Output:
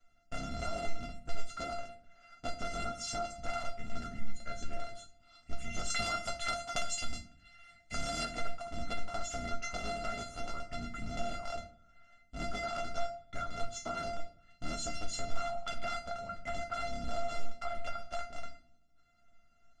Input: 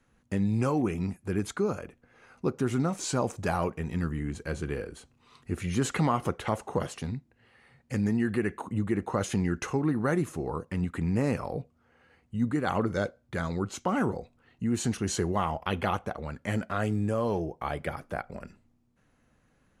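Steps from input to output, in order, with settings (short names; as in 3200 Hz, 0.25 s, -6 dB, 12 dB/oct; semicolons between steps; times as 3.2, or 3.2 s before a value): cycle switcher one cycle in 3, inverted; LPF 6900 Hz 24 dB/oct; high shelf 5200 Hz +8 dB; resonator 690 Hz, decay 0.23 s, harmonics all, mix 100%; small resonant body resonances 230/1300/3100 Hz, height 10 dB, ringing for 35 ms; compressor 4:1, threshold -48 dBFS, peak gain reduction 12 dB; 5.9–8.25 high shelf 2400 Hz +10.5 dB; reverb RT60 0.55 s, pre-delay 7 ms, DRR 6.5 dB; gain +12 dB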